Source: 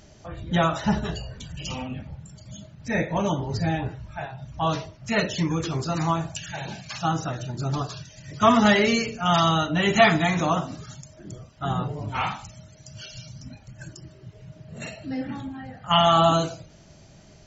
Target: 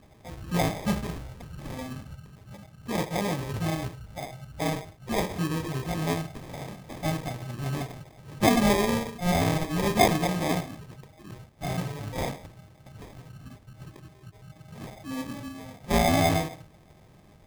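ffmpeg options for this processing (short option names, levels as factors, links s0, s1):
-af "acrusher=samples=31:mix=1:aa=0.000001,volume=0.631"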